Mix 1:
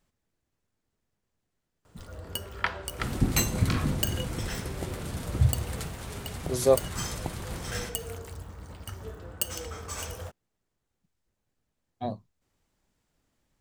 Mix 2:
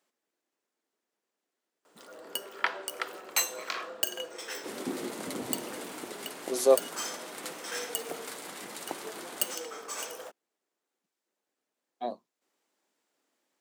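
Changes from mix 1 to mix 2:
second sound: entry +1.65 s; master: add HPF 290 Hz 24 dB/oct

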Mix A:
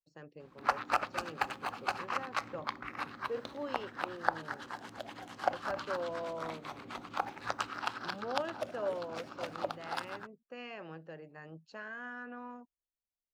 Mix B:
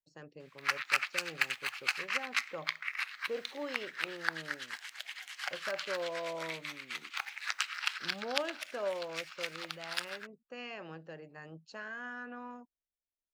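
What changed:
background: add resonant high-pass 2100 Hz, resonance Q 2.7; master: add high shelf 3800 Hz +9.5 dB

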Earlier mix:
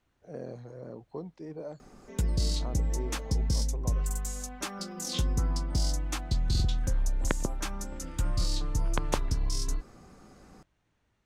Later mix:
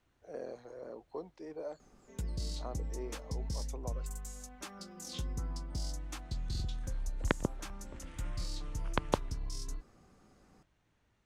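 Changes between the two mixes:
speech: add HPF 380 Hz 12 dB/oct; first sound -10.0 dB

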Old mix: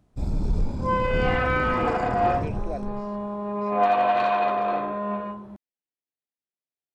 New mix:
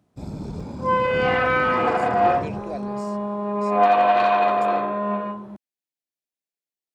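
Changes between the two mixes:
speech: remove air absorption 270 m; second sound +4.0 dB; master: add HPF 120 Hz 12 dB/oct

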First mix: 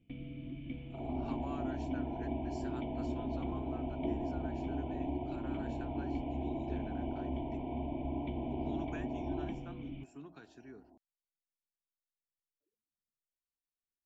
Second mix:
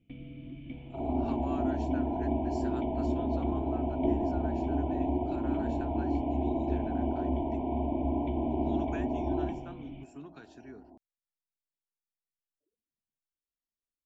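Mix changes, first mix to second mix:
speech +3.5 dB; second sound +8.0 dB

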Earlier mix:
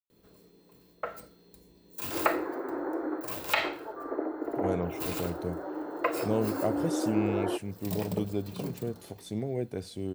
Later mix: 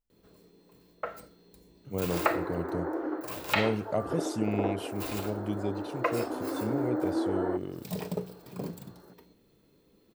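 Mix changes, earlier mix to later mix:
speech: entry -2.70 s; master: add high shelf 9200 Hz -4.5 dB

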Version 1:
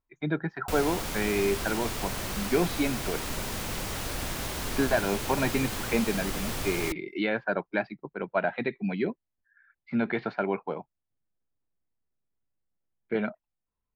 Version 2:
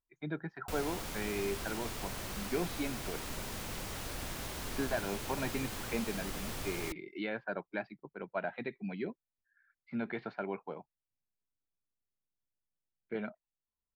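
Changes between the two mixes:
speech -9.5 dB; background -7.5 dB

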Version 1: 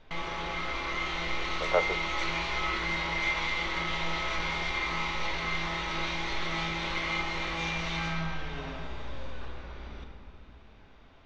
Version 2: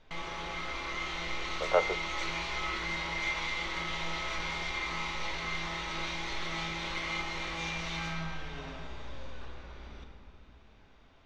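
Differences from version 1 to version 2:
background -4.5 dB; master: remove air absorption 72 m

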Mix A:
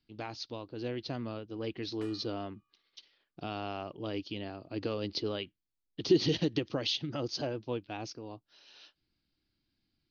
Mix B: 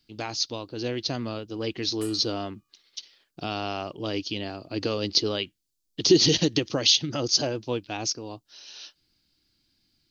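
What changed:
speech +6.0 dB; master: remove air absorption 230 m

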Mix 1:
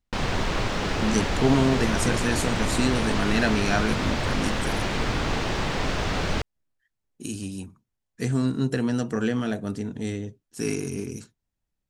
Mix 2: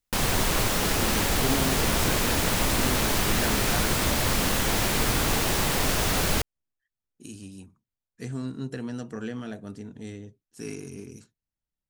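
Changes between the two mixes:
speech -9.0 dB; background: remove air absorption 140 m

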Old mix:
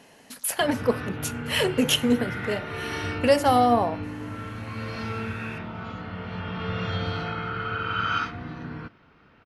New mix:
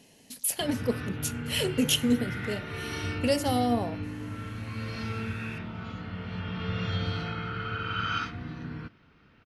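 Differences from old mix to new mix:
speech: add bell 1400 Hz -11 dB 1 oct; master: add bell 790 Hz -7.5 dB 2.3 oct

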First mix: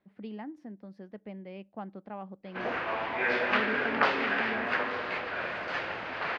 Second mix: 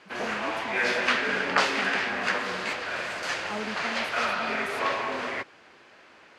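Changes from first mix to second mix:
background: entry -2.45 s; master: remove air absorption 320 m

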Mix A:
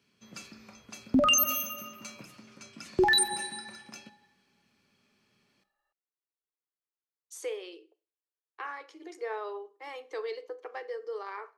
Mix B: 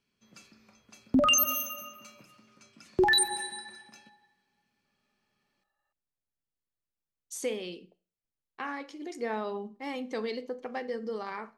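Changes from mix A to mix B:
speech: remove rippled Chebyshev high-pass 310 Hz, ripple 6 dB; first sound -8.5 dB

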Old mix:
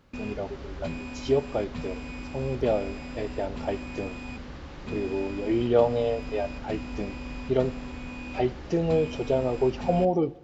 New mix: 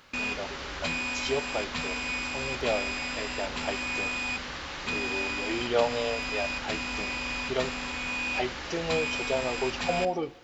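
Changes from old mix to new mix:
speech -3.0 dB; first sound +4.5 dB; master: add tilt shelf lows -10 dB, about 640 Hz

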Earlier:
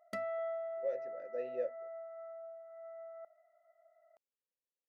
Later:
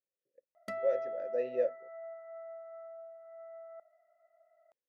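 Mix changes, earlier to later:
speech +6.5 dB; background: entry +0.55 s

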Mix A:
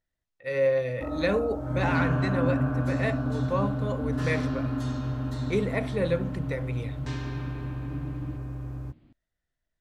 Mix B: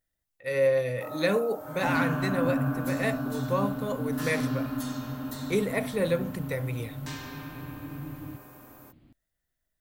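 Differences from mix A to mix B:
first sound: add HPF 560 Hz 12 dB/oct; master: remove air absorption 86 m

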